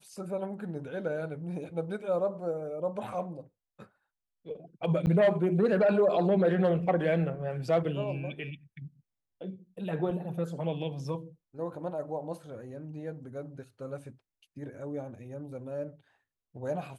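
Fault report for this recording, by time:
0:05.06–0:05.07: drop-out 9.6 ms

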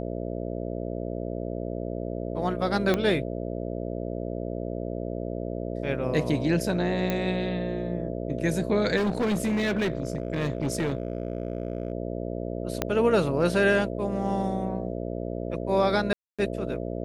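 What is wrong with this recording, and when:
mains buzz 60 Hz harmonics 11 −32 dBFS
0:02.94: click −11 dBFS
0:07.10: click −13 dBFS
0:08.96–0:11.92: clipping −22 dBFS
0:12.82: click −10 dBFS
0:16.13–0:16.39: drop-out 256 ms

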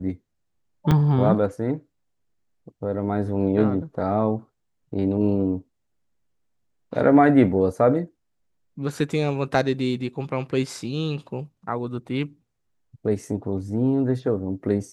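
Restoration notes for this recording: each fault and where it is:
0:00.91–0:00.92: drop-out 5.4 ms

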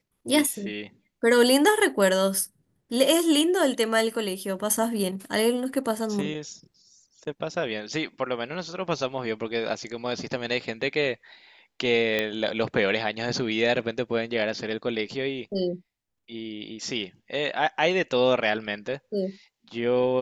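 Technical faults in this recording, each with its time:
0:12.19: click −11 dBFS

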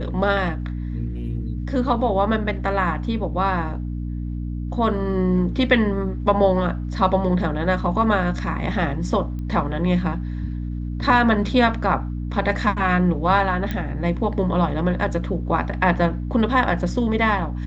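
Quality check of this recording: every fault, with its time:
mains hum 60 Hz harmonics 5 −27 dBFS
0:09.39: click −23 dBFS
0:13.71: click −13 dBFS

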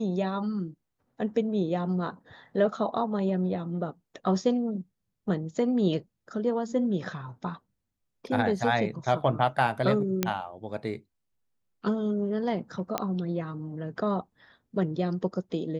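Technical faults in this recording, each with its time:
0:10.23: click −9 dBFS
0:12.98: click −12 dBFS

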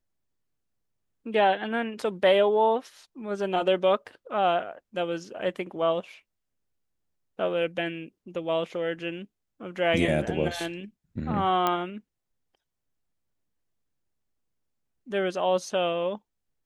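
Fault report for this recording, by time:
0:11.67: click −11 dBFS

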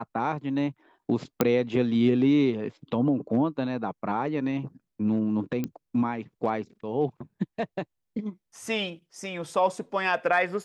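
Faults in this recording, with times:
0:01.41: click −7 dBFS
0:05.64: click −17 dBFS

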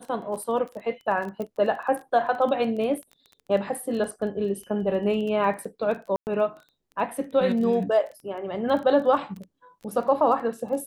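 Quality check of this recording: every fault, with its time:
surface crackle 17 per second −33 dBFS
0:01.42: click −22 dBFS
0:06.16–0:06.27: drop-out 109 ms

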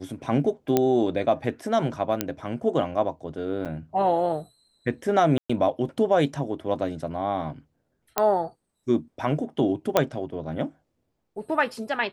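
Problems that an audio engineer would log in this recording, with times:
0:00.77: click −7 dBFS
0:02.21: click −7 dBFS
0:03.65–0:03.66: drop-out 7.6 ms
0:05.38–0:05.50: drop-out 115 ms
0:08.18: click −5 dBFS
0:09.97: click −5 dBFS

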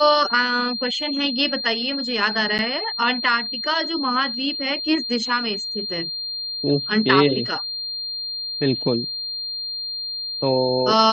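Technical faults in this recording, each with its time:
whistle 4,200 Hz −26 dBFS
0:02.58–0:02.59: drop-out 8.8 ms

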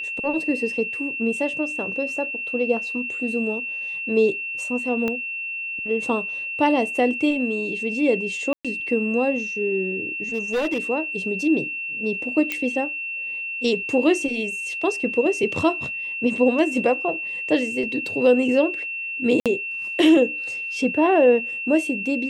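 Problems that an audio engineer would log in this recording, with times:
whistle 2,700 Hz −27 dBFS
0:05.08: click −13 dBFS
0:08.53–0:08.65: drop-out 116 ms
0:10.33–0:10.79: clipping −19 dBFS
0:12.52: click −10 dBFS
0:19.40–0:19.46: drop-out 57 ms

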